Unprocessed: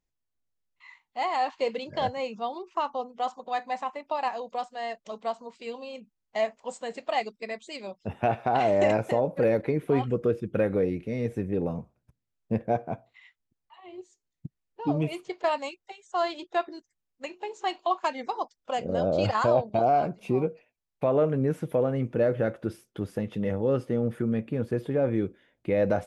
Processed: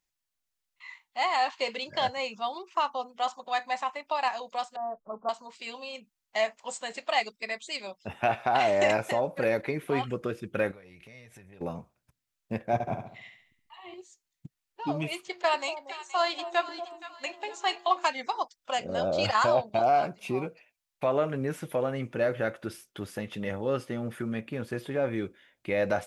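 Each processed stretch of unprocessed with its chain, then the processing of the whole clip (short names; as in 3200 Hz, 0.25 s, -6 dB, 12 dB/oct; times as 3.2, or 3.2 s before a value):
4.76–5.29 steep low-pass 1400 Hz 72 dB/oct + tilt -2 dB/oct
10.71–11.61 bell 300 Hz -11.5 dB 1.3 oct + compressor 8:1, threshold -43 dBFS
12.73–13.94 low shelf 250 Hz +10.5 dB + notch 1500 Hz, Q 13 + flutter echo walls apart 12 m, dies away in 0.61 s
15.19–18.09 de-hum 118.1 Hz, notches 17 + echo with dull and thin repeats by turns 0.236 s, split 840 Hz, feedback 62%, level -9.5 dB
whole clip: tilt shelf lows -7 dB, about 770 Hz; notch 470 Hz, Q 12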